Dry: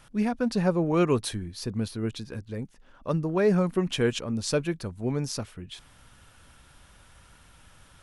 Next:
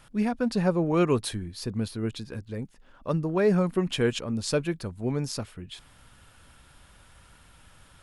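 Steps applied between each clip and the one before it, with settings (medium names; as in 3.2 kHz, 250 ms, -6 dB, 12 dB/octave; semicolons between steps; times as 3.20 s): band-stop 5.9 kHz, Q 14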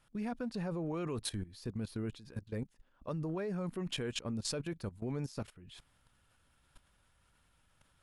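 level held to a coarse grid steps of 17 dB; trim -2.5 dB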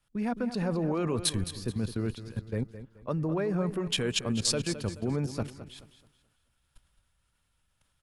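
on a send: feedback delay 215 ms, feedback 44%, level -11 dB; on the sum: three bands expanded up and down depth 40%; trim +7.5 dB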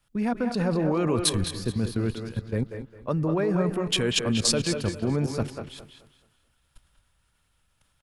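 speakerphone echo 190 ms, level -6 dB; trim +4.5 dB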